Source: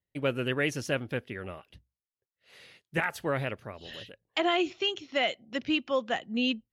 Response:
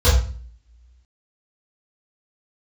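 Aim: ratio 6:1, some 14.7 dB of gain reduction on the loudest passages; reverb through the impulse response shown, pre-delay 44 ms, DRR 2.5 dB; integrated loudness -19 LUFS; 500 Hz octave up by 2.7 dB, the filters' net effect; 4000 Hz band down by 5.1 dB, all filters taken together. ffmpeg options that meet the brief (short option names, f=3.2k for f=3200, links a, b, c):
-filter_complex "[0:a]equalizer=f=500:t=o:g=3.5,equalizer=f=4k:t=o:g=-8.5,acompressor=threshold=-38dB:ratio=6,asplit=2[a][b];[1:a]atrim=start_sample=2205,adelay=44[c];[b][c]afir=irnorm=-1:irlink=0,volume=-23dB[d];[a][d]amix=inputs=2:normalize=0,volume=19dB"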